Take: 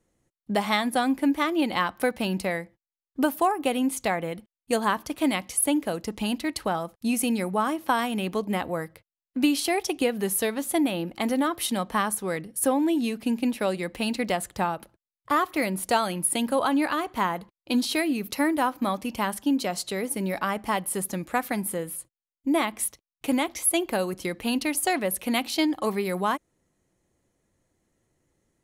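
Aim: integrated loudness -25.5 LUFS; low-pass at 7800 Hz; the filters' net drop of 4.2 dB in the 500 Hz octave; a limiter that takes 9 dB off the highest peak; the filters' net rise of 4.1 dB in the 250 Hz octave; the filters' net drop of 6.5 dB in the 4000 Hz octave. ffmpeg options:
-af "lowpass=7.8k,equalizer=f=250:t=o:g=7,equalizer=f=500:t=o:g=-8,equalizer=f=4k:t=o:g=-8.5,volume=2.5dB,alimiter=limit=-15.5dB:level=0:latency=1"

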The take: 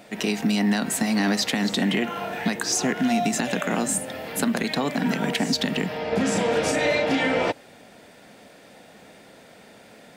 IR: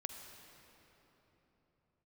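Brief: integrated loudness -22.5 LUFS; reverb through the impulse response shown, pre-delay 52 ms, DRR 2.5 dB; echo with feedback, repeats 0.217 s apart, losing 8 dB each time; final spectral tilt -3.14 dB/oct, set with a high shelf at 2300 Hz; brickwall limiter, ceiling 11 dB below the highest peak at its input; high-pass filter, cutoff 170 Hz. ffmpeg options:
-filter_complex "[0:a]highpass=170,highshelf=f=2.3k:g=3,alimiter=limit=-20dB:level=0:latency=1,aecho=1:1:217|434|651|868|1085:0.398|0.159|0.0637|0.0255|0.0102,asplit=2[a][b];[1:a]atrim=start_sample=2205,adelay=52[c];[b][c]afir=irnorm=-1:irlink=0,volume=-0.5dB[d];[a][d]amix=inputs=2:normalize=0,volume=3.5dB"

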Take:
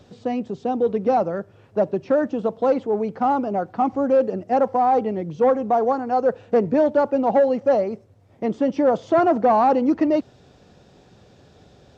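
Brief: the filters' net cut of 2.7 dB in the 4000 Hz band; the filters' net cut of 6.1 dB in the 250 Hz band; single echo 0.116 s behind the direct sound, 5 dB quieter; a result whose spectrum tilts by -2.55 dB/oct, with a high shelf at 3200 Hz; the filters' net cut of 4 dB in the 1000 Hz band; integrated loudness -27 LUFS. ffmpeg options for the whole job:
-af "equalizer=f=250:t=o:g=-7,equalizer=f=1k:t=o:g=-5.5,highshelf=f=3.2k:g=3.5,equalizer=f=4k:t=o:g=-6,aecho=1:1:116:0.562,volume=-4dB"

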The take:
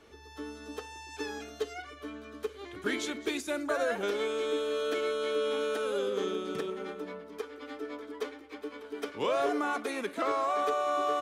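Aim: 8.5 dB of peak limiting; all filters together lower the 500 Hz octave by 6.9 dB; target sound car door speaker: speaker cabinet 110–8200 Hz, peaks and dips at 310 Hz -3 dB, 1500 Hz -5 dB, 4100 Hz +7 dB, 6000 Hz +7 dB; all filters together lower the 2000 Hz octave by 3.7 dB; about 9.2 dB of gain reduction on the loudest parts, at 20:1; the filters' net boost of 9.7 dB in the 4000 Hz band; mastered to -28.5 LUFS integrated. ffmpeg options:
-af "equalizer=f=500:t=o:g=-8,equalizer=f=2k:t=o:g=-4,equalizer=f=4k:t=o:g=9,acompressor=threshold=-38dB:ratio=20,alimiter=level_in=11dB:limit=-24dB:level=0:latency=1,volume=-11dB,highpass=110,equalizer=f=310:t=q:w=4:g=-3,equalizer=f=1.5k:t=q:w=4:g=-5,equalizer=f=4.1k:t=q:w=4:g=7,equalizer=f=6k:t=q:w=4:g=7,lowpass=f=8.2k:w=0.5412,lowpass=f=8.2k:w=1.3066,volume=14dB"

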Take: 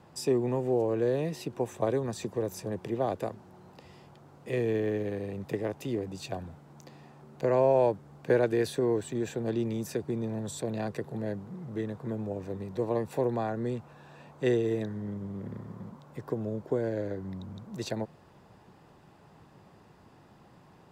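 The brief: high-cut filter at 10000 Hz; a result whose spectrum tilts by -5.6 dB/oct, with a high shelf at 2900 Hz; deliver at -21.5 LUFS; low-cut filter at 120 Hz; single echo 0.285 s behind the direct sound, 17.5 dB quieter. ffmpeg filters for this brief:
-af "highpass=120,lowpass=10k,highshelf=f=2.9k:g=-6,aecho=1:1:285:0.133,volume=10.5dB"

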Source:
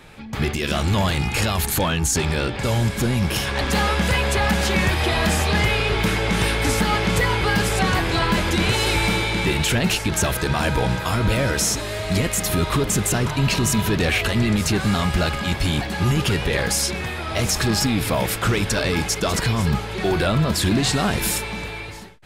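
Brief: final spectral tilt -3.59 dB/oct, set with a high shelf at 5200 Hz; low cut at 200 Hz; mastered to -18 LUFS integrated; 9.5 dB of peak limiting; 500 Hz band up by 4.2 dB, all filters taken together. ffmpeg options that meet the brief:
-af "highpass=200,equalizer=f=500:t=o:g=5.5,highshelf=f=5.2k:g=-3.5,volume=7.5dB,alimiter=limit=-9dB:level=0:latency=1"

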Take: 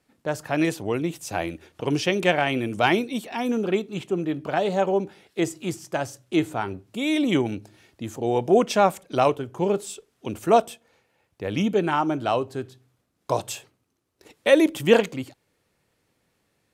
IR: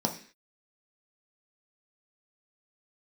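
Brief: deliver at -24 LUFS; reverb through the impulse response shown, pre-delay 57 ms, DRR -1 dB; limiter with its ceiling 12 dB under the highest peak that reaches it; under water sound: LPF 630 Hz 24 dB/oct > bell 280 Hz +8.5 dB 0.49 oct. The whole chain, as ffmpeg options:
-filter_complex "[0:a]alimiter=limit=-14.5dB:level=0:latency=1,asplit=2[a][b];[1:a]atrim=start_sample=2205,adelay=57[c];[b][c]afir=irnorm=-1:irlink=0,volume=-7dB[d];[a][d]amix=inputs=2:normalize=0,lowpass=f=630:w=0.5412,lowpass=f=630:w=1.3066,equalizer=f=280:t=o:w=0.49:g=8.5,volume=-7dB"

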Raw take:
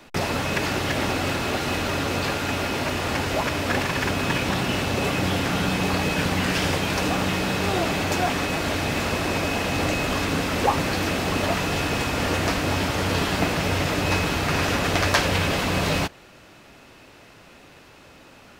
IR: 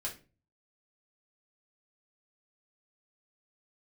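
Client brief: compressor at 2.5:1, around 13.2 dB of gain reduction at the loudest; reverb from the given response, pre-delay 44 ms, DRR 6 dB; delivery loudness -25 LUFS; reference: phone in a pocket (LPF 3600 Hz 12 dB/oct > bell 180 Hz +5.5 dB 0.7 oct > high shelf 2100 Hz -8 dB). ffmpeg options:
-filter_complex "[0:a]acompressor=threshold=-37dB:ratio=2.5,asplit=2[a][b];[1:a]atrim=start_sample=2205,adelay=44[c];[b][c]afir=irnorm=-1:irlink=0,volume=-7dB[d];[a][d]amix=inputs=2:normalize=0,lowpass=3.6k,equalizer=f=180:t=o:w=0.7:g=5.5,highshelf=f=2.1k:g=-8,volume=9.5dB"

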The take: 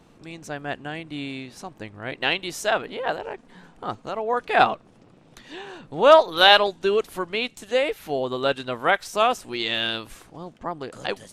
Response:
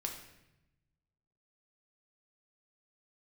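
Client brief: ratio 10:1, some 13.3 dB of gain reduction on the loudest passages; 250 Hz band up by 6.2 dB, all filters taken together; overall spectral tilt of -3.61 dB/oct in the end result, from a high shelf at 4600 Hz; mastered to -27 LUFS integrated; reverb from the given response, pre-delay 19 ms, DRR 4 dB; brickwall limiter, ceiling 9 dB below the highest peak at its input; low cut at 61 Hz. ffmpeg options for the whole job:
-filter_complex "[0:a]highpass=61,equalizer=f=250:t=o:g=8,highshelf=f=4.6k:g=9,acompressor=threshold=-20dB:ratio=10,alimiter=limit=-17dB:level=0:latency=1,asplit=2[a][b];[1:a]atrim=start_sample=2205,adelay=19[c];[b][c]afir=irnorm=-1:irlink=0,volume=-4dB[d];[a][d]amix=inputs=2:normalize=0,volume=1dB"

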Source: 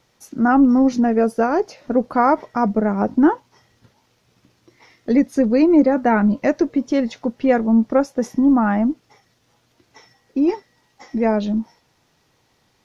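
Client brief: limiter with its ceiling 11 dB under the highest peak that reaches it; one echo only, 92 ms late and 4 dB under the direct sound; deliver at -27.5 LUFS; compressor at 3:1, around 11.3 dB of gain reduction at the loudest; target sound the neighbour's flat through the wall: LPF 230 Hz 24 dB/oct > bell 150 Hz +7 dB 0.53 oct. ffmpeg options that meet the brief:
-af "acompressor=threshold=-26dB:ratio=3,alimiter=level_in=1dB:limit=-24dB:level=0:latency=1,volume=-1dB,lowpass=f=230:w=0.5412,lowpass=f=230:w=1.3066,equalizer=f=150:t=o:w=0.53:g=7,aecho=1:1:92:0.631,volume=8dB"

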